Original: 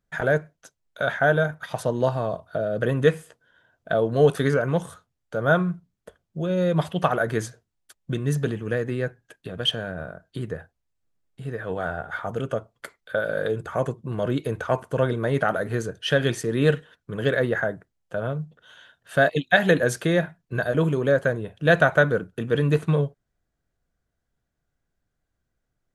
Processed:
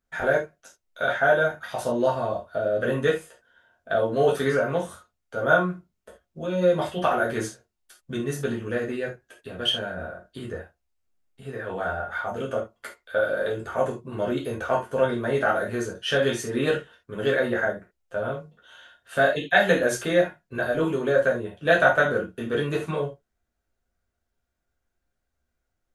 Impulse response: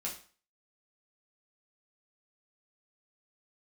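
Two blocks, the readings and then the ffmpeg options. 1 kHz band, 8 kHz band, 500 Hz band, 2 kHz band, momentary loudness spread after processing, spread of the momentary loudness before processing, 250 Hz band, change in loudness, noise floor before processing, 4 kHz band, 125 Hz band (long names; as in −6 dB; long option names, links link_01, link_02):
+1.5 dB, +1.0 dB, 0.0 dB, 0.0 dB, 15 LU, 13 LU, −3.0 dB, −1.0 dB, −79 dBFS, 0.0 dB, −8.5 dB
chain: -filter_complex "[0:a]equalizer=frequency=160:width=2:gain=-11.5[link_01];[1:a]atrim=start_sample=2205,atrim=end_sample=3969[link_02];[link_01][link_02]afir=irnorm=-1:irlink=0"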